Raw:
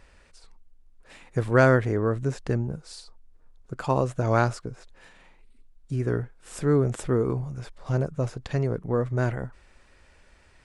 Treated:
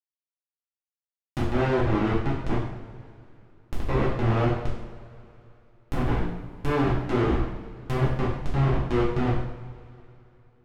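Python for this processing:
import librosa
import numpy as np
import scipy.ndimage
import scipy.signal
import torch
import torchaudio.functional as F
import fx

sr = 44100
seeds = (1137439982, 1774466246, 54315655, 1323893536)

y = fx.schmitt(x, sr, flips_db=-23.0)
y = fx.env_lowpass_down(y, sr, base_hz=2000.0, full_db=-27.5)
y = fx.rev_double_slope(y, sr, seeds[0], early_s=0.72, late_s=3.1, knee_db=-18, drr_db=-6.5)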